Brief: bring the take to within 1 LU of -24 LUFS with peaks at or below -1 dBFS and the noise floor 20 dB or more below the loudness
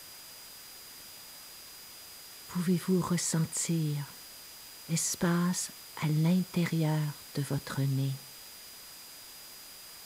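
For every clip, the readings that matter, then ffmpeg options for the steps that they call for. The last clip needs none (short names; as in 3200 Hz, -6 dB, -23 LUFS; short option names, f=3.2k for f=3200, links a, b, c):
steady tone 4900 Hz; tone level -52 dBFS; noise floor -49 dBFS; noise floor target -51 dBFS; loudness -31.0 LUFS; peak -17.5 dBFS; loudness target -24.0 LUFS
-> -af "bandreject=f=4.9k:w=30"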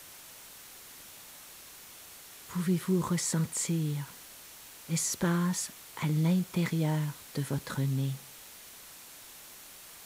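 steady tone none; noise floor -50 dBFS; noise floor target -51 dBFS
-> -af "afftdn=nr=6:nf=-50"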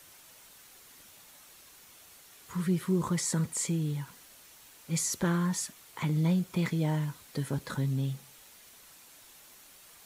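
noise floor -55 dBFS; loudness -31.0 LUFS; peak -17.5 dBFS; loudness target -24.0 LUFS
-> -af "volume=7dB"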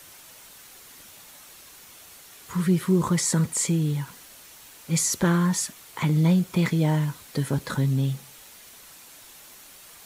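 loudness -24.0 LUFS; peak -10.5 dBFS; noise floor -48 dBFS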